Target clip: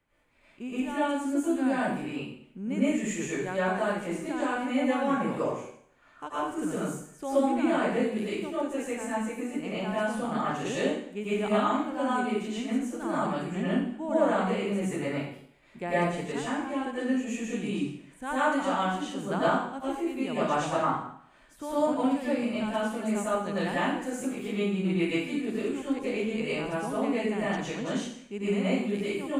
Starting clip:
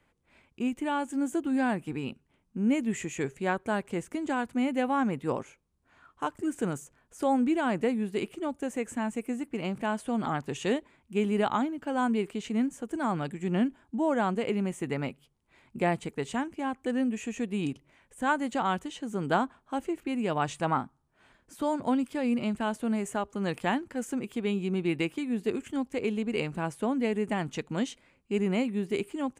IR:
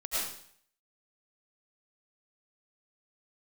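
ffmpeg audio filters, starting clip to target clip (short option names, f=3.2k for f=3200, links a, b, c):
-filter_complex "[1:a]atrim=start_sample=2205,asetrate=41454,aresample=44100[a];[0:a][a]afir=irnorm=-1:irlink=0,volume=-4.5dB"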